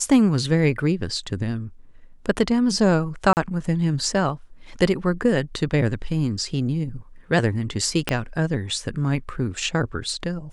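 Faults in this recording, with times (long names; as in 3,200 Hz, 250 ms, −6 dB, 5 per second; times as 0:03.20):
0:03.33–0:03.37: drop-out 39 ms
0:08.09: click −7 dBFS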